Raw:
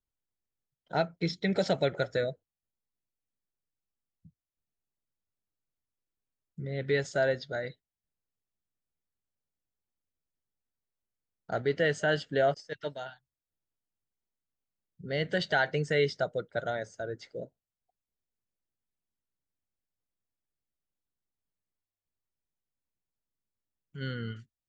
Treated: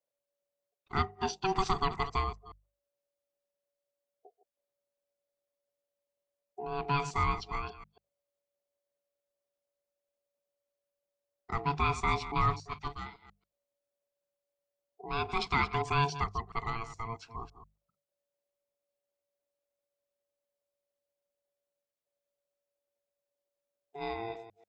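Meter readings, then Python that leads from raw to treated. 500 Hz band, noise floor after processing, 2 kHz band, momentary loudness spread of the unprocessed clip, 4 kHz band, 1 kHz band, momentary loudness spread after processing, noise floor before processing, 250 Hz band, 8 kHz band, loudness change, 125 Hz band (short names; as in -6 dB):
-10.5 dB, under -85 dBFS, -4.5 dB, 14 LU, -2.5 dB, +6.5 dB, 14 LU, under -85 dBFS, -5.0 dB, +1.5 dB, -2.0 dB, -0.5 dB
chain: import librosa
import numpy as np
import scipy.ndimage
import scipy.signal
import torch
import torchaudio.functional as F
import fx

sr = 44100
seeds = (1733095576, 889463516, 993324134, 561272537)

y = fx.reverse_delay(x, sr, ms=140, wet_db=-13.0)
y = y * np.sin(2.0 * np.pi * 570.0 * np.arange(len(y)) / sr)
y = fx.hum_notches(y, sr, base_hz=50, count=4)
y = y * librosa.db_to_amplitude(1.0)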